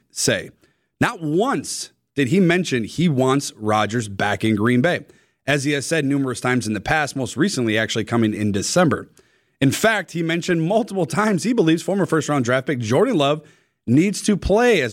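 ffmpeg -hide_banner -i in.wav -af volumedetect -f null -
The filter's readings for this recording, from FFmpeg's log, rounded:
mean_volume: -19.7 dB
max_volume: -4.3 dB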